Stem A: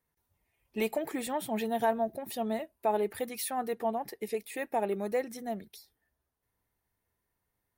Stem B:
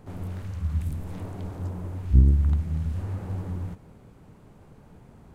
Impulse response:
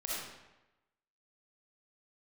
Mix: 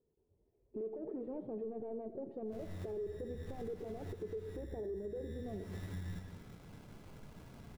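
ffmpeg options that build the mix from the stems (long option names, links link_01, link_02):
-filter_complex "[0:a]alimiter=limit=-24dB:level=0:latency=1:release=478,asoftclip=type=hard:threshold=-38.5dB,lowpass=frequency=420:width_type=q:width=4.9,volume=-0.5dB,asplit=3[link_01][link_02][link_03];[link_02]volume=-11.5dB[link_04];[1:a]adynamicequalizer=threshold=0.00398:dfrequency=610:dqfactor=0.88:tfrequency=610:tqfactor=0.88:attack=5:release=100:ratio=0.375:range=1.5:mode=cutabove:tftype=bell,acompressor=threshold=-31dB:ratio=6,acrusher=samples=24:mix=1:aa=0.000001,adelay=2450,volume=-7dB,asplit=2[link_05][link_06];[link_06]volume=-4dB[link_07];[link_03]apad=whole_len=343936[link_08];[link_05][link_08]sidechaincompress=threshold=-50dB:ratio=8:attack=16:release=243[link_09];[2:a]atrim=start_sample=2205[link_10];[link_04][link_07]amix=inputs=2:normalize=0[link_11];[link_11][link_10]afir=irnorm=-1:irlink=0[link_12];[link_01][link_09][link_12]amix=inputs=3:normalize=0,alimiter=level_in=10.5dB:limit=-24dB:level=0:latency=1:release=265,volume=-10.5dB"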